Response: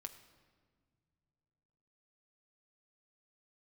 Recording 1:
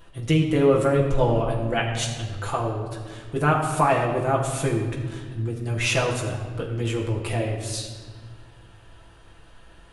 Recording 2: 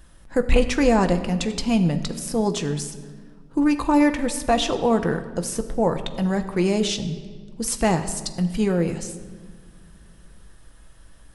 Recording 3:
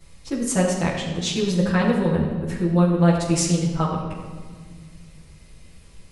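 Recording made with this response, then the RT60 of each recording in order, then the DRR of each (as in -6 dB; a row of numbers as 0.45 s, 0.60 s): 2; 1.6 s, no single decay rate, 1.6 s; -3.5 dB, 6.5 dB, -9.5 dB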